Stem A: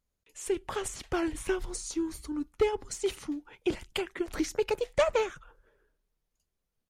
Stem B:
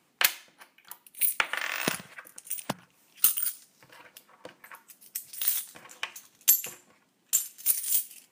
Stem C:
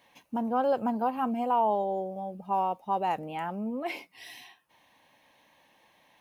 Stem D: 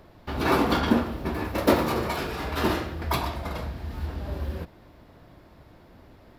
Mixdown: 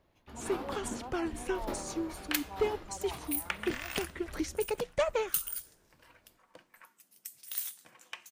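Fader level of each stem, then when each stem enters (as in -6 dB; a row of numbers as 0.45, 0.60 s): -4.0, -9.0, -17.5, -19.0 dB; 0.00, 2.10, 0.00, 0.00 s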